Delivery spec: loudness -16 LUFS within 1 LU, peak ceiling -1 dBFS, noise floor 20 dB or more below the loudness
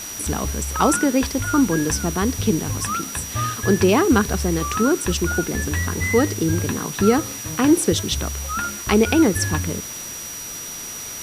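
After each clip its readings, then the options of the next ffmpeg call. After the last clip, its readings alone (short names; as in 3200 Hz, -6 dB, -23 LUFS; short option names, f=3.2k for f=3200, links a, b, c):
steady tone 5800 Hz; tone level -32 dBFS; noise floor -33 dBFS; noise floor target -41 dBFS; loudness -20.5 LUFS; peak -2.5 dBFS; loudness target -16.0 LUFS
-> -af "bandreject=f=5.8k:w=30"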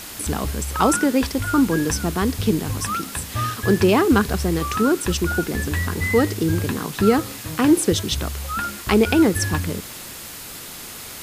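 steady tone none; noise floor -36 dBFS; noise floor target -41 dBFS
-> -af "afftdn=nr=6:nf=-36"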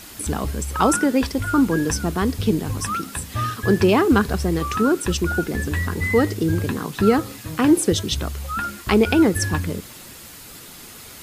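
noise floor -41 dBFS; loudness -21.0 LUFS; peak -2.5 dBFS; loudness target -16.0 LUFS
-> -af "volume=5dB,alimiter=limit=-1dB:level=0:latency=1"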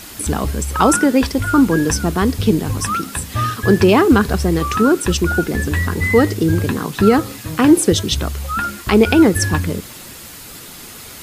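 loudness -16.0 LUFS; peak -1.0 dBFS; noise floor -36 dBFS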